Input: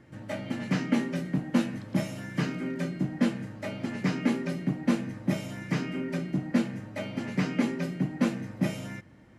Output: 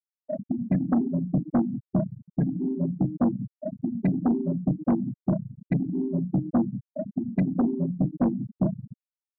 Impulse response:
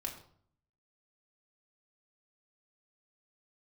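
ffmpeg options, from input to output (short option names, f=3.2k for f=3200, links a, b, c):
-af "acrusher=bits=5:mix=0:aa=0.5,afftfilt=real='re*gte(hypot(re,im),0.112)':imag='im*gte(hypot(re,im),0.112)':win_size=1024:overlap=0.75,aeval=exprs='0.224*(cos(1*acos(clip(val(0)/0.224,-1,1)))-cos(1*PI/2))+0.0562*(cos(5*acos(clip(val(0)/0.224,-1,1)))-cos(5*PI/2))':c=same"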